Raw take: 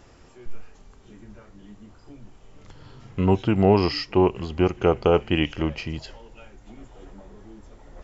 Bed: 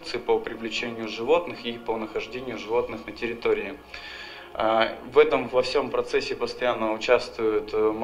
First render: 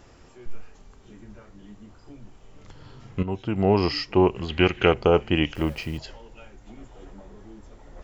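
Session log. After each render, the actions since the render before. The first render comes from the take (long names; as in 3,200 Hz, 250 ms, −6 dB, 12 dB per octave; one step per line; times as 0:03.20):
0:03.23–0:03.94: fade in linear, from −13.5 dB
0:04.48–0:04.94: flat-topped bell 2,500 Hz +11.5 dB
0:05.55–0:05.98: hold until the input has moved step −45.5 dBFS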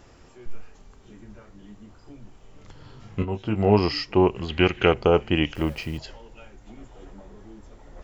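0:03.00–0:03.79: double-tracking delay 19 ms −6 dB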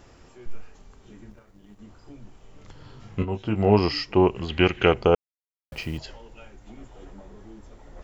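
0:01.30–0:01.79: mu-law and A-law mismatch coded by A
0:05.15–0:05.72: silence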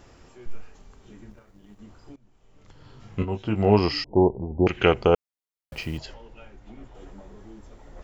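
0:02.16–0:03.26: fade in, from −19 dB
0:04.04–0:04.67: Butterworth low-pass 930 Hz 96 dB per octave
0:06.14–0:06.95: high-frequency loss of the air 99 metres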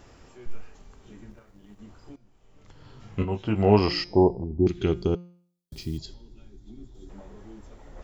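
0:04.44–0:07.10: gain on a spectral selection 430–3,200 Hz −16 dB
hum removal 175.7 Hz, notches 36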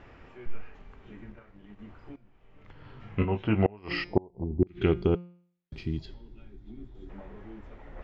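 gate with flip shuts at −11 dBFS, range −31 dB
low-pass with resonance 2,300 Hz, resonance Q 1.6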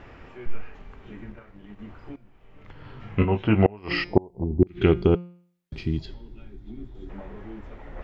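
level +5.5 dB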